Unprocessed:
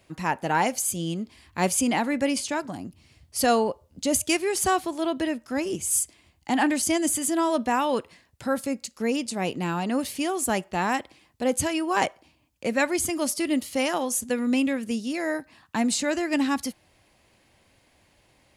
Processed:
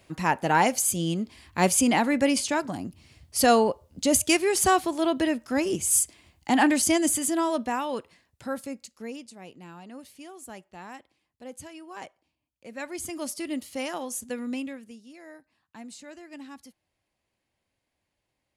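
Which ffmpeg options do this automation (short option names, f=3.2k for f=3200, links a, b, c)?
-af "volume=12.5dB,afade=t=out:st=6.82:d=1.03:silence=0.398107,afade=t=out:st=8.51:d=0.87:silence=0.266073,afade=t=in:st=12.67:d=0.5:silence=0.298538,afade=t=out:st=14.4:d=0.56:silence=0.251189"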